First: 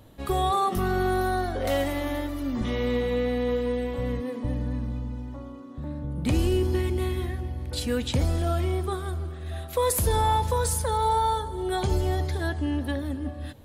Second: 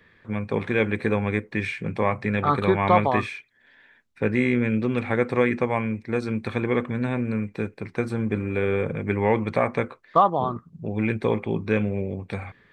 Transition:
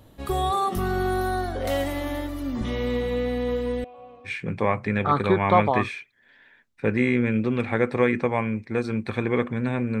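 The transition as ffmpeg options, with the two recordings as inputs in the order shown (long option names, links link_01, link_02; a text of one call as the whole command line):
ffmpeg -i cue0.wav -i cue1.wav -filter_complex "[0:a]asettb=1/sr,asplit=3[link_01][link_02][link_03];[link_01]atrim=end=3.844[link_04];[link_02]atrim=start=3.84:end=4.32,asetpts=PTS-STARTPTS,afade=type=in:duration=0.004:curve=qsin,afade=type=out:start_time=0.476:duration=0.004:curve=qsin,asplit=3[link_05][link_06][link_07];[link_05]bandpass=frequency=730:width_type=q:width=8,volume=0dB[link_08];[link_06]bandpass=frequency=1090:width_type=q:width=8,volume=-6dB[link_09];[link_07]bandpass=frequency=2440:width_type=q:width=8,volume=-9dB[link_10];[link_08][link_09][link_10]amix=inputs=3:normalize=0[link_11];[link_03]atrim=start=4.316[link_12];[link_04][link_11]acrossfade=duration=0.004:curve1=hsin:curve2=qsin[link_13];[link_13][link_12]acrossfade=duration=0.004:curve1=qsin:curve2=hsin,apad=whole_dur=10,atrim=end=10,atrim=end=4.32,asetpts=PTS-STARTPTS[link_14];[1:a]atrim=start=1.62:end=7.38,asetpts=PTS-STARTPTS[link_15];[link_14][link_15]acrossfade=duration=0.08:curve1=tri:curve2=tri" out.wav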